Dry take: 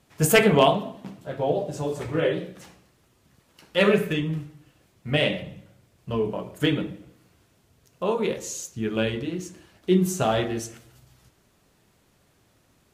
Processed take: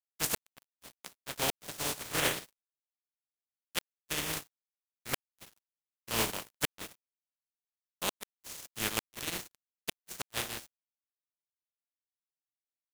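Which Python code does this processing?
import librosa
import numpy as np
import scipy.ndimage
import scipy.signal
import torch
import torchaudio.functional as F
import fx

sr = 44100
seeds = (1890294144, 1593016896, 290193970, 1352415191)

y = fx.spec_flatten(x, sr, power=0.24)
y = fx.rider(y, sr, range_db=3, speed_s=0.5)
y = fx.gate_flip(y, sr, shuts_db=-8.0, range_db=-28)
y = np.sign(y) * np.maximum(np.abs(y) - 10.0 ** (-32.0 / 20.0), 0.0)
y = F.gain(torch.from_numpy(y), -5.5).numpy()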